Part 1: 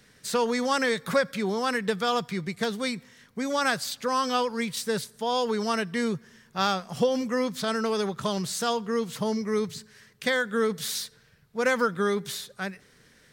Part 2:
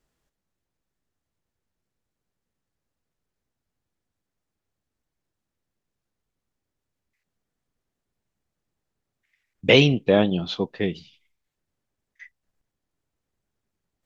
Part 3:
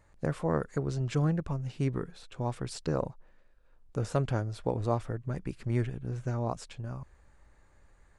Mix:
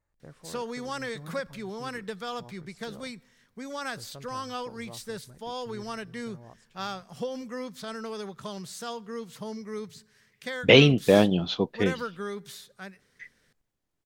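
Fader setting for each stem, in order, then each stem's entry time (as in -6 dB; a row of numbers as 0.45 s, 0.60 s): -9.5 dB, -0.5 dB, -17.5 dB; 0.20 s, 1.00 s, 0.00 s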